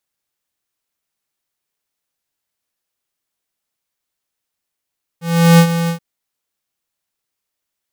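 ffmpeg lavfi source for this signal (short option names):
-f lavfi -i "aevalsrc='0.501*(2*lt(mod(168*t,1),0.5)-1)':d=0.779:s=44100,afade=t=in:d=0.377,afade=t=out:st=0.377:d=0.077:silence=0.282,afade=t=out:st=0.68:d=0.099"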